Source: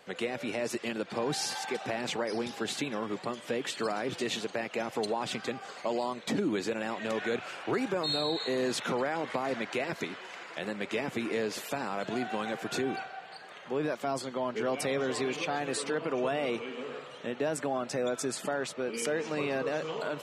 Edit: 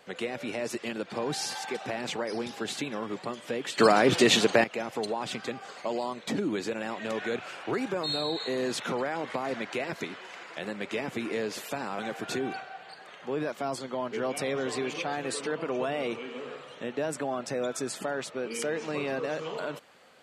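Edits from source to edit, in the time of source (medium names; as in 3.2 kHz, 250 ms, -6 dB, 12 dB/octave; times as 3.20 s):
3.78–4.64 s: gain +12 dB
11.99–12.42 s: delete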